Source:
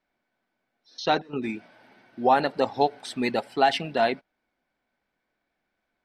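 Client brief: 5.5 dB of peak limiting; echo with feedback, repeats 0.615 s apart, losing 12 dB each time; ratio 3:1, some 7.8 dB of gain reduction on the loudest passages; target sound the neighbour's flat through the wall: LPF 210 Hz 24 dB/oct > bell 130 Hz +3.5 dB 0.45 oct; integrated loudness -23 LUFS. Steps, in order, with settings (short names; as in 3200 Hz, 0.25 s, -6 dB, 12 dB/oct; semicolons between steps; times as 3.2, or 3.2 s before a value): compressor 3:1, threshold -25 dBFS; limiter -18.5 dBFS; LPF 210 Hz 24 dB/oct; bell 130 Hz +3.5 dB 0.45 oct; feedback echo 0.615 s, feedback 25%, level -12 dB; gain +21.5 dB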